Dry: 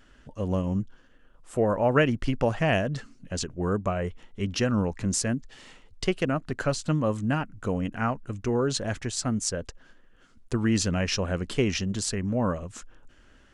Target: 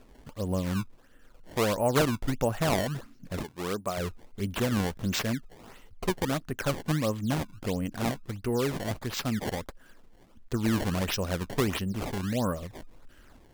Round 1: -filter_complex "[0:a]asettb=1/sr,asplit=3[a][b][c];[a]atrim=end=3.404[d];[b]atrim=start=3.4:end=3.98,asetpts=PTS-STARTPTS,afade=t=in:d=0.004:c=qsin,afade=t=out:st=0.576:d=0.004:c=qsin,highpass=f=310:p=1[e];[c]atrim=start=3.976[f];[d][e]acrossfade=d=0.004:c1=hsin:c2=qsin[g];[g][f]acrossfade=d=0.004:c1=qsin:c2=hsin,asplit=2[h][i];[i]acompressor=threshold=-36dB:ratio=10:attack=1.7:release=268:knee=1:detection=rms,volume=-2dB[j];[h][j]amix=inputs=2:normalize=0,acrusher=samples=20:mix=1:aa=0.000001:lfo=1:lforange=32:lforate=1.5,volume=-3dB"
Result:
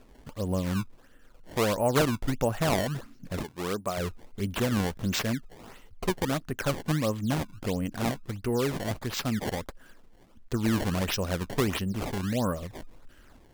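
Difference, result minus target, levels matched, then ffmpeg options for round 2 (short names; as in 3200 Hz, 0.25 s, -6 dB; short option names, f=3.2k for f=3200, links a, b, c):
compressor: peak gain reduction -8 dB
-filter_complex "[0:a]asettb=1/sr,asplit=3[a][b][c];[a]atrim=end=3.404[d];[b]atrim=start=3.4:end=3.98,asetpts=PTS-STARTPTS,afade=t=in:d=0.004:c=qsin,afade=t=out:st=0.576:d=0.004:c=qsin,highpass=f=310:p=1[e];[c]atrim=start=3.976[f];[d][e]acrossfade=d=0.004:c1=hsin:c2=qsin[g];[g][f]acrossfade=d=0.004:c1=qsin:c2=hsin,asplit=2[h][i];[i]acompressor=threshold=-45dB:ratio=10:attack=1.7:release=268:knee=1:detection=rms,volume=-2dB[j];[h][j]amix=inputs=2:normalize=0,acrusher=samples=20:mix=1:aa=0.000001:lfo=1:lforange=32:lforate=1.5,volume=-3dB"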